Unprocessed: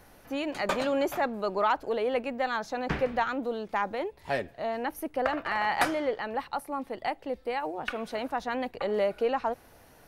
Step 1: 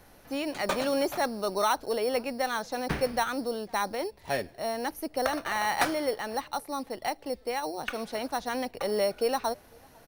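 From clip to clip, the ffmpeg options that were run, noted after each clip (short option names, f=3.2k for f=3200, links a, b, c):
-filter_complex "[0:a]acrossover=split=1200[a][b];[a]acrusher=samples=9:mix=1:aa=0.000001[c];[c][b]amix=inputs=2:normalize=0,asplit=2[d][e];[e]adelay=501.5,volume=-29dB,highshelf=f=4k:g=-11.3[f];[d][f]amix=inputs=2:normalize=0"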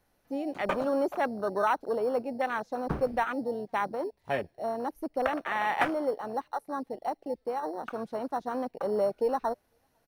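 -af "afwtdn=0.0251"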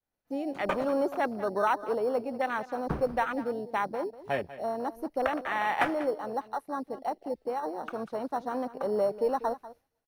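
-af "agate=range=-33dB:threshold=-60dB:ratio=3:detection=peak,aecho=1:1:193:0.168"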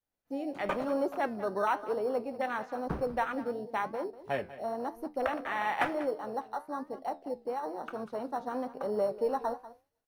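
-af "flanger=delay=9.9:depth=6.8:regen=-72:speed=1:shape=triangular,volume=1.5dB"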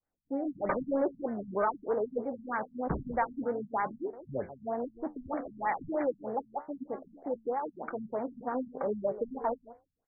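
-af "asoftclip=type=tanh:threshold=-21.5dB,afftfilt=real='re*lt(b*sr/1024,230*pow(2400/230,0.5+0.5*sin(2*PI*3.2*pts/sr)))':imag='im*lt(b*sr/1024,230*pow(2400/230,0.5+0.5*sin(2*PI*3.2*pts/sr)))':win_size=1024:overlap=0.75,volume=3dB"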